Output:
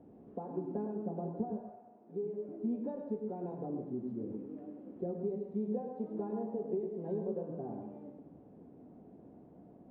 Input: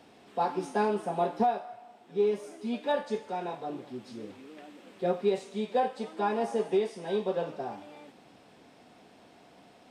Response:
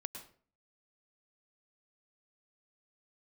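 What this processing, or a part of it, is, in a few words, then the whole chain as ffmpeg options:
television next door: -filter_complex "[0:a]acompressor=threshold=-34dB:ratio=6,lowpass=370[link_01];[1:a]atrim=start_sample=2205[link_02];[link_01][link_02]afir=irnorm=-1:irlink=0,asettb=1/sr,asplit=3[link_03][link_04][link_05];[link_03]atrim=end=1.694[link_06];[link_04]atrim=start=1.69:end=2.49,asetpts=PTS-STARTPTS,afade=type=in:duration=0.004:curve=qsin,afade=type=out:start_time=0.796:duration=0.004:curve=qsin,highpass=frequency=290:poles=1[link_07];[link_05]atrim=start=2.486[link_08];[link_06][link_07]acrossfade=duration=0.004:curve1=hsin:curve2=qsin[link_09];[link_09][link_08]acrossfade=duration=0.004:curve1=qsin:curve2=hsin,volume=7dB"

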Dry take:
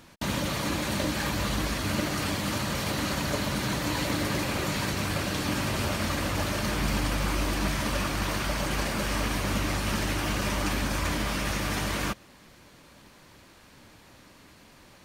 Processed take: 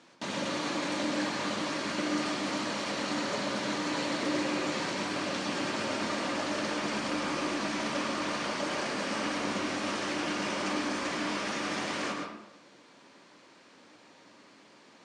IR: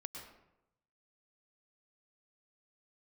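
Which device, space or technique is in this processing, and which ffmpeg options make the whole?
supermarket ceiling speaker: -filter_complex "[0:a]highpass=240,lowpass=6700,lowpass=frequency=8900:width=0.5412,lowpass=frequency=8900:width=1.3066,equalizer=frequency=270:width=0.38:gain=3,highshelf=frequency=6800:gain=5.5[link_01];[1:a]atrim=start_sample=2205[link_02];[link_01][link_02]afir=irnorm=-1:irlink=0,highpass=frequency=130:poles=1"

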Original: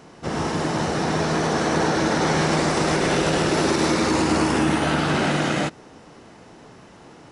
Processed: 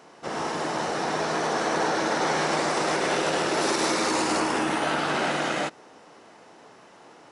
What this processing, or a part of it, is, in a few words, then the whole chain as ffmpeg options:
filter by subtraction: -filter_complex "[0:a]asettb=1/sr,asplit=3[link_01][link_02][link_03];[link_01]atrim=end=3.614[link_04];[link_02]atrim=start=3.61:end=4.4,asetpts=PTS-STARTPTS,afade=type=in:duration=0.004:curve=qsin,afade=type=out:start_time=0.786:duration=0.004:curve=qsin,highshelf=frequency=5300:gain=6[link_05];[link_03]atrim=start=4.396[link_06];[link_04][link_05]acrossfade=duration=0.004:curve1=hsin:curve2=qsin[link_07];[link_07][link_06]acrossfade=duration=0.004:curve1=qsin:curve2=hsin,asplit=2[link_08][link_09];[link_09]lowpass=700,volume=-1[link_10];[link_08][link_10]amix=inputs=2:normalize=0,volume=-3.5dB"

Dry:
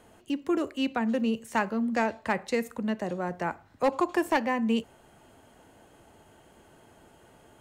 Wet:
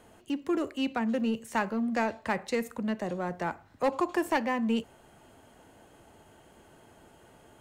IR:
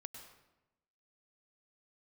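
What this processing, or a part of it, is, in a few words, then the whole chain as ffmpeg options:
parallel distortion: -filter_complex "[0:a]asplit=2[link_01][link_02];[link_02]asoftclip=type=hard:threshold=-32.5dB,volume=-8dB[link_03];[link_01][link_03]amix=inputs=2:normalize=0,volume=-3dB"

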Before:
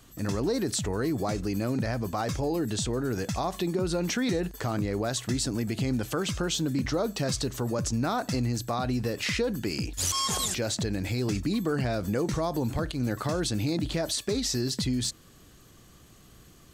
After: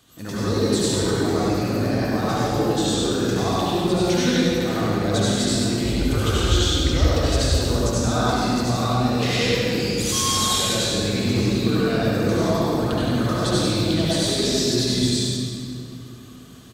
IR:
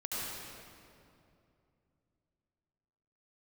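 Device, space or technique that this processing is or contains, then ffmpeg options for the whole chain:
PA in a hall: -filter_complex "[0:a]asettb=1/sr,asplit=3[link_01][link_02][link_03];[link_01]atrim=end=5.844[link_04];[link_02]atrim=start=5.84:end=7.42,asetpts=PTS-STARTPTS,afade=type=in:duration=0.004:curve=qsin,afade=type=out:start_time=1.576:duration=0.004:curve=qsin,lowshelf=frequency=110:width_type=q:width=3:gain=13.5[link_05];[link_03]atrim=start=7.416[link_06];[link_04][link_05]acrossfade=duration=0.004:curve1=hsin:curve2=qsin[link_07];[link_07][link_06]acrossfade=duration=0.004:curve1=qsin:curve2=hsin,highpass=frequency=110:poles=1,equalizer=frequency=3600:width_type=o:width=0.41:gain=7,aecho=1:1:98:0.531[link_08];[1:a]atrim=start_sample=2205[link_09];[link_08][link_09]afir=irnorm=-1:irlink=0,volume=2.5dB"

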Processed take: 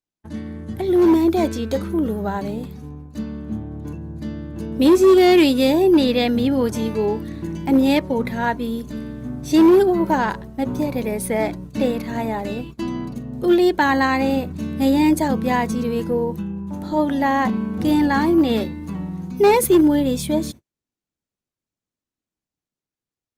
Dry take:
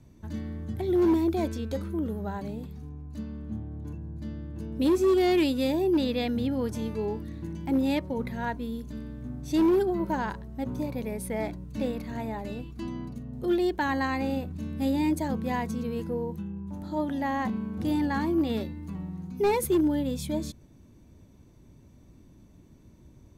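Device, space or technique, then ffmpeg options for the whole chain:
video call: -af "highpass=frequency=170:poles=1,dynaudnorm=framelen=460:gausssize=5:maxgain=3.5dB,agate=range=-47dB:threshold=-42dB:ratio=16:detection=peak,volume=7.5dB" -ar 48000 -c:a libopus -b:a 32k

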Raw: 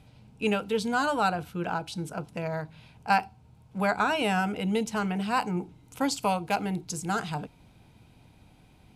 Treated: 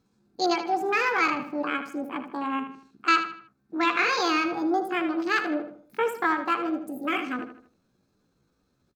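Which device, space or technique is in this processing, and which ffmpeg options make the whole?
chipmunk voice: -filter_complex "[0:a]asetrate=74167,aresample=44100,atempo=0.594604,afwtdn=0.0141,asplit=2[link_01][link_02];[link_02]adelay=78,lowpass=frequency=4900:poles=1,volume=-9dB,asplit=2[link_03][link_04];[link_04]adelay=78,lowpass=frequency=4900:poles=1,volume=0.39,asplit=2[link_05][link_06];[link_06]adelay=78,lowpass=frequency=4900:poles=1,volume=0.39,asplit=2[link_07][link_08];[link_08]adelay=78,lowpass=frequency=4900:poles=1,volume=0.39[link_09];[link_01][link_03][link_05][link_07][link_09]amix=inputs=5:normalize=0,volume=2dB"

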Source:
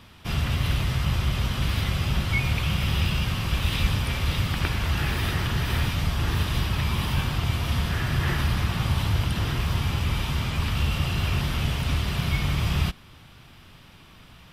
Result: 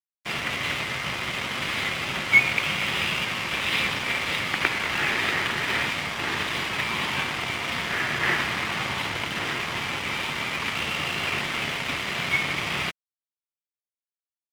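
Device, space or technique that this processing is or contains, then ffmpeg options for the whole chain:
pocket radio on a weak battery: -af "highpass=320,lowpass=4400,aeval=exprs='sgn(val(0))*max(abs(val(0))-0.01,0)':channel_layout=same,equalizer=frequency=2100:width_type=o:width=0.47:gain=8,volume=7dB"

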